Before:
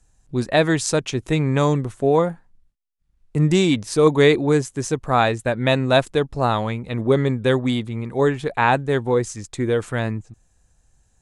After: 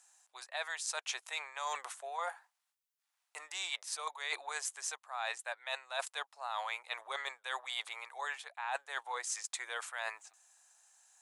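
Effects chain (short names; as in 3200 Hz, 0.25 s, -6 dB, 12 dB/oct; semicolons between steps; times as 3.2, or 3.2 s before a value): steep high-pass 740 Hz 36 dB/oct; high shelf 5100 Hz +4.5 dB; reverse; compressor 16:1, threshold -36 dBFS, peak gain reduction 23.5 dB; reverse; gain +1 dB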